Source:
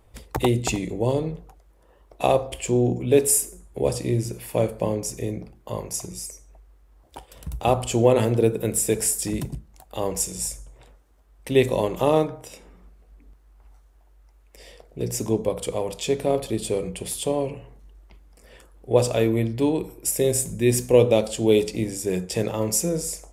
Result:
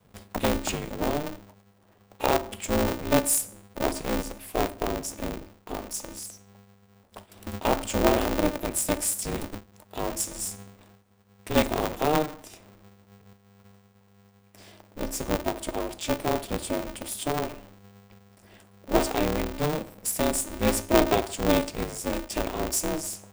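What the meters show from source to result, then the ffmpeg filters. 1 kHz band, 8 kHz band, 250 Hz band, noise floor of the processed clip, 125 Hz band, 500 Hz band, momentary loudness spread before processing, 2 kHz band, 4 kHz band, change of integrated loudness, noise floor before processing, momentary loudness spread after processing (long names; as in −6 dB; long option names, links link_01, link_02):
+1.0 dB, −4.0 dB, −3.0 dB, −60 dBFS, −8.5 dB, −6.5 dB, 13 LU, +2.5 dB, −0.5 dB, −4.5 dB, −56 dBFS, 13 LU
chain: -af "adynamicequalizer=threshold=0.0316:dfrequency=170:dqfactor=0.75:tfrequency=170:tqfactor=0.75:attack=5:release=100:ratio=0.375:range=2:mode=cutabove:tftype=bell,aeval=exprs='val(0)*sgn(sin(2*PI*150*n/s))':channel_layout=same,volume=-4dB"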